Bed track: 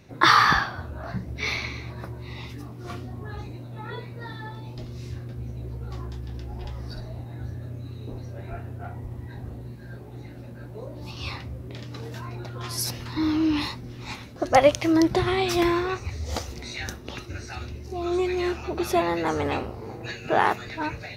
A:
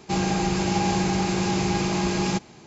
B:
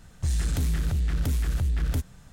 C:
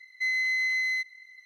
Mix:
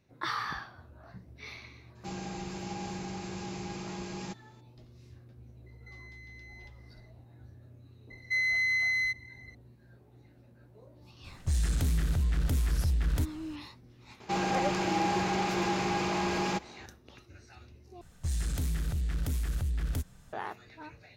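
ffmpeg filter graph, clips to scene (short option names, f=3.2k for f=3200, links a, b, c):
-filter_complex "[1:a]asplit=2[a][b];[3:a]asplit=2[c][d];[2:a]asplit=2[e][f];[0:a]volume=-17.5dB[g];[c]acompressor=threshold=-35dB:ratio=6:attack=3.2:release=140:knee=1:detection=peak[h];[d]equalizer=f=1.3k:t=o:w=0.77:g=4[i];[b]asplit=2[j][k];[k]highpass=f=720:p=1,volume=18dB,asoftclip=type=tanh:threshold=-11dB[l];[j][l]amix=inputs=2:normalize=0,lowpass=f=1.9k:p=1,volume=-6dB[m];[f]highshelf=f=7.1k:g=3.5[n];[g]asplit=2[o][p];[o]atrim=end=18.014[q];[n]atrim=end=2.32,asetpts=PTS-STARTPTS,volume=-6dB[r];[p]atrim=start=20.326[s];[a]atrim=end=2.66,asetpts=PTS-STARTPTS,volume=-15.5dB,afade=t=in:d=0.004:c=hsin,afade=t=out:st=2.656:d=0.004:c=hsin,adelay=1950[t];[h]atrim=end=1.45,asetpts=PTS-STARTPTS,volume=-16dB,afade=t=in:d=0.004:c=hsin,afade=t=out:st=1.446:d=0.004:c=hsin,adelay=5660[u];[i]atrim=end=1.45,asetpts=PTS-STARTPTS,volume=-2dB,afade=t=in:d=0.004:c=hsin,afade=t=out:st=1.446:d=0.004:c=hsin,adelay=357210S[v];[e]atrim=end=2.32,asetpts=PTS-STARTPTS,volume=-2.5dB,afade=t=in:d=0.004:c=hsin,afade=t=out:st=2.316:d=0.004:c=hsin,adelay=11240[w];[m]atrim=end=2.66,asetpts=PTS-STARTPTS,volume=-9dB,afade=t=in:d=0.004:c=hsin,afade=t=out:st=2.656:d=0.004:c=hsin,adelay=14200[x];[q][r]acrossfade=d=0.004:c1=hsin:c2=hsin[y];[y][s]acrossfade=d=0.004:c1=hsin:c2=hsin[z];[z][t][u][v][w][x]amix=inputs=6:normalize=0"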